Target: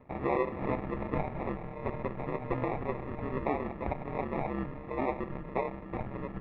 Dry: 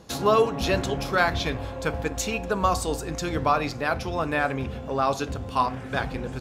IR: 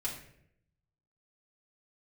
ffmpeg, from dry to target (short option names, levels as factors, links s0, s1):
-filter_complex "[0:a]asplit=2[s0][s1];[1:a]atrim=start_sample=2205[s2];[s1][s2]afir=irnorm=-1:irlink=0,volume=0.2[s3];[s0][s3]amix=inputs=2:normalize=0,aeval=exprs='val(0)*sin(2*PI*67*n/s)':c=same,alimiter=limit=0.211:level=0:latency=1:release=193,acrusher=samples=29:mix=1:aa=0.000001,lowpass=f=2100:w=0.5412,lowpass=f=2100:w=1.3066,volume=0.596"